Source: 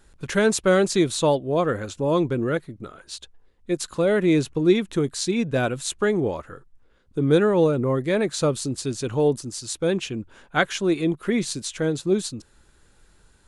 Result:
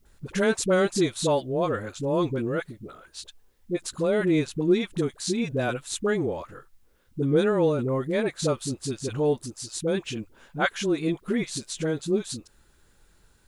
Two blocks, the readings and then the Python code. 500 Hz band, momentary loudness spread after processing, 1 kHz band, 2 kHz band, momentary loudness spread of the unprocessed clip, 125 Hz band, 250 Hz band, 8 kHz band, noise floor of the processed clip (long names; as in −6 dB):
−3.5 dB, 14 LU, −3.5 dB, −3.5 dB, 12 LU, −3.5 dB, −3.5 dB, −3.5 dB, −61 dBFS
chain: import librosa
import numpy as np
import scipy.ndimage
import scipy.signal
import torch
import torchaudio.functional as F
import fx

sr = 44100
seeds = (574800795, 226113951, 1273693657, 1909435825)

y = fx.dispersion(x, sr, late='highs', ms=56.0, hz=560.0)
y = fx.quant_dither(y, sr, seeds[0], bits=12, dither='triangular')
y = F.gain(torch.from_numpy(y), -3.5).numpy()